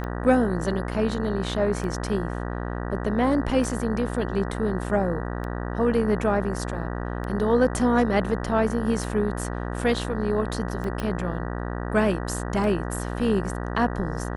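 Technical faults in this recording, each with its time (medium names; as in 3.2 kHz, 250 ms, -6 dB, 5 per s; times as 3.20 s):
buzz 60 Hz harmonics 32 -30 dBFS
tick 33 1/3 rpm -21 dBFS
11.00 s: pop -16 dBFS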